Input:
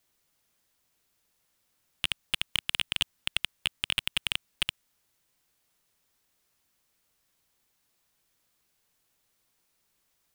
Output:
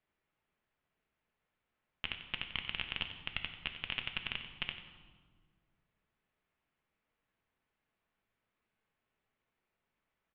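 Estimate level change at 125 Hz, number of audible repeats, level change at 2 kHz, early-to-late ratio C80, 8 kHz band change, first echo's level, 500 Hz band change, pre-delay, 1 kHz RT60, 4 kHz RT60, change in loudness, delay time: −4.0 dB, 1, −6.0 dB, 8.5 dB, below −35 dB, −12.5 dB, −4.0 dB, 5 ms, 1.5 s, 1.2 s, −9.0 dB, 92 ms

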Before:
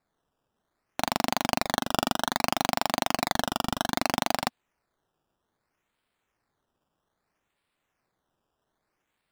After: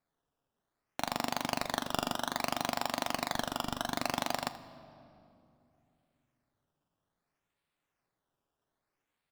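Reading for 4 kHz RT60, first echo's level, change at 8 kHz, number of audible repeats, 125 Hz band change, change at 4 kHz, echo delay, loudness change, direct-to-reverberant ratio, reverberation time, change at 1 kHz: 1.8 s, −17.5 dB, −6.5 dB, 1, −6.5 dB, −6.5 dB, 81 ms, −6.5 dB, 9.5 dB, 2.8 s, −7.0 dB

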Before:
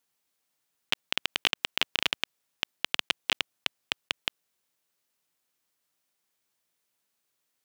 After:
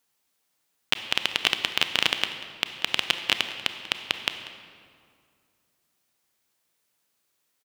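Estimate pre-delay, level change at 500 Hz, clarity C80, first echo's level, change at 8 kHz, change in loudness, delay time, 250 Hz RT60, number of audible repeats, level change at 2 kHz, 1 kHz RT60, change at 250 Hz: 27 ms, +5.0 dB, 9.0 dB, −17.5 dB, +4.5 dB, +4.5 dB, 190 ms, 2.6 s, 1, +4.5 dB, 2.2 s, +5.0 dB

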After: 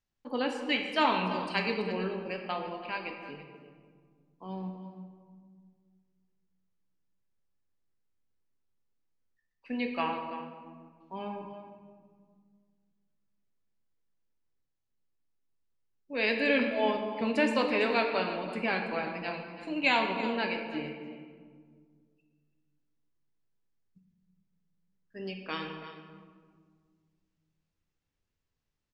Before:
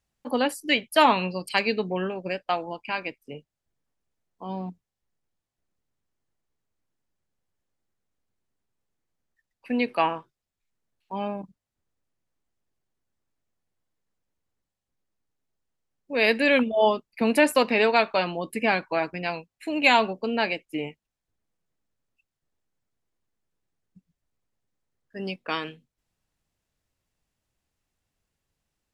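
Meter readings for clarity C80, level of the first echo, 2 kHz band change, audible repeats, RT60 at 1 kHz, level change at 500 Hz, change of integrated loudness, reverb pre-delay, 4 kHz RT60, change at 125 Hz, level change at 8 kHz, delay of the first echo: 5.5 dB, −13.5 dB, −6.0 dB, 1, 1.7 s, −7.0 dB, −6.5 dB, 3 ms, 1.0 s, −4.5 dB, below −10 dB, 332 ms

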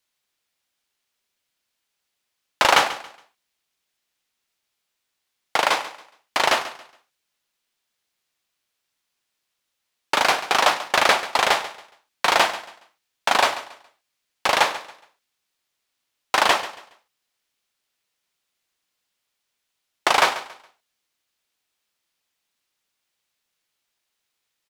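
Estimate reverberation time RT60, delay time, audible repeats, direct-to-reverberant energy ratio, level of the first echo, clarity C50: no reverb audible, 139 ms, 2, no reverb audible, −15.0 dB, no reverb audible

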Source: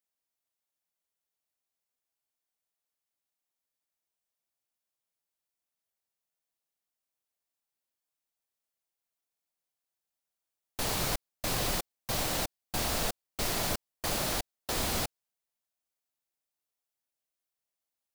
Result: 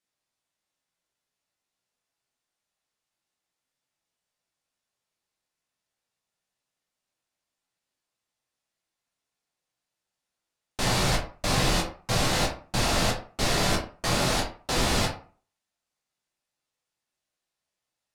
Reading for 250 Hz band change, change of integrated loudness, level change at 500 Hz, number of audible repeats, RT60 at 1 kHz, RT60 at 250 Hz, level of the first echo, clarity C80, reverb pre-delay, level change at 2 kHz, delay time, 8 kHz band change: +9.0 dB, +6.0 dB, +7.5 dB, no echo audible, 0.40 s, 0.40 s, no echo audible, 13.0 dB, 9 ms, +8.0 dB, no echo audible, +4.0 dB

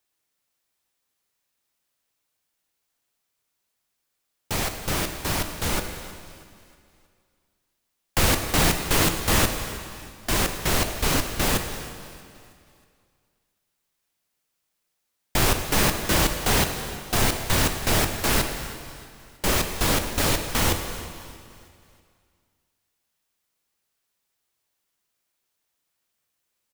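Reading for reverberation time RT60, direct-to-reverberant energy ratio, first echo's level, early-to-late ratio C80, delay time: 2.4 s, 5.0 dB, −19.0 dB, 7.5 dB, 318 ms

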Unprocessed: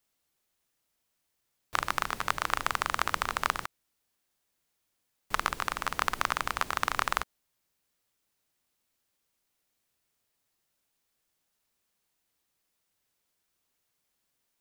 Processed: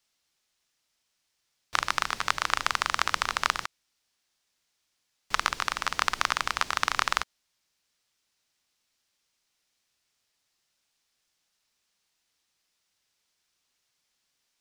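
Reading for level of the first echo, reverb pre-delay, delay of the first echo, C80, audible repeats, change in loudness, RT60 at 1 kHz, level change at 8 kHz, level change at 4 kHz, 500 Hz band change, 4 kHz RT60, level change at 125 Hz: no echo audible, no reverb audible, no echo audible, no reverb audible, no echo audible, +3.0 dB, no reverb audible, +4.5 dB, +6.5 dB, −1.0 dB, no reverb audible, −2.0 dB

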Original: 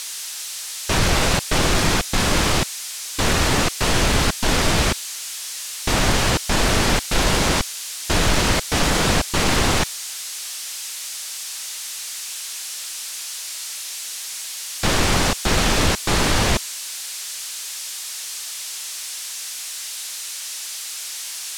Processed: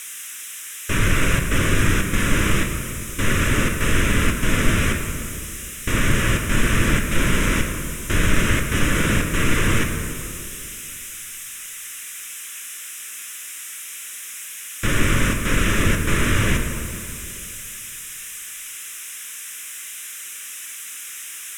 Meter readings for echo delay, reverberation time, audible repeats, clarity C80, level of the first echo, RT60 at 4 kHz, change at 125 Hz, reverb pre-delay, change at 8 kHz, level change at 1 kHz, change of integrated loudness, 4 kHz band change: no echo audible, 2.5 s, no echo audible, 6.5 dB, no echo audible, 1.4 s, +2.0 dB, 3 ms, −4.0 dB, −5.5 dB, −1.5 dB, −7.0 dB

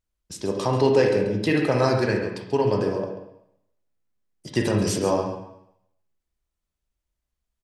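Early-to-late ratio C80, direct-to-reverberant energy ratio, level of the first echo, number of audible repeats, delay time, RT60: 6.5 dB, 1.5 dB, −11.5 dB, 1, 136 ms, 0.75 s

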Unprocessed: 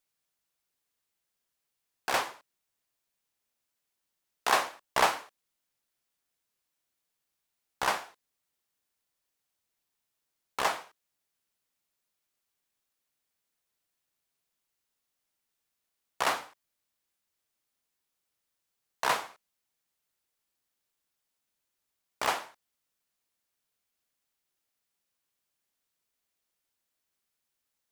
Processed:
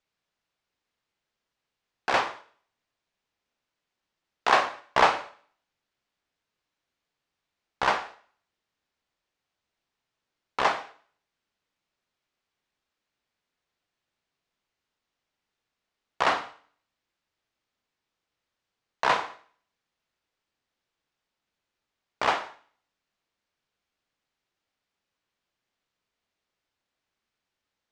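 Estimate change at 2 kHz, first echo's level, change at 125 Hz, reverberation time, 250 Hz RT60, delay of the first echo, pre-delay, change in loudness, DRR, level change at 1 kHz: +4.5 dB, no echo audible, +5.5 dB, 0.50 s, 0.55 s, no echo audible, 17 ms, +4.5 dB, 11.5 dB, +5.0 dB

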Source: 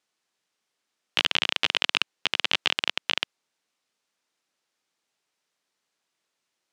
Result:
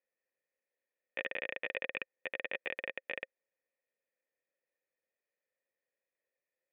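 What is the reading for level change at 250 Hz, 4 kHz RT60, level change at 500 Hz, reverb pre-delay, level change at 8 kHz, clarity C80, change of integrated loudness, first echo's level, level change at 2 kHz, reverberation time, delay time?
−13.5 dB, no reverb audible, −2.5 dB, no reverb audible, below −35 dB, no reverb audible, −14.5 dB, no echo audible, −10.5 dB, no reverb audible, no echo audible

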